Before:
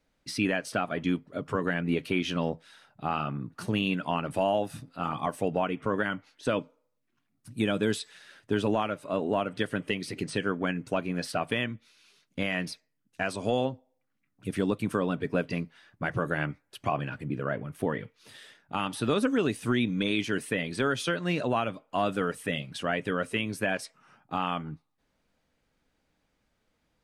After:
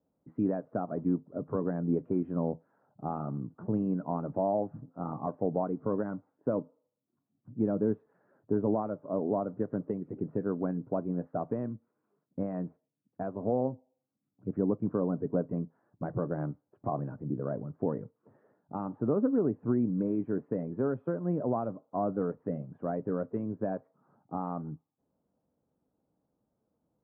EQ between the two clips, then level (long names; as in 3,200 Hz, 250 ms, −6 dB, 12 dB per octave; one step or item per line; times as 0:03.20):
high-pass filter 110 Hz
Bessel low-pass filter 660 Hz, order 6
0.0 dB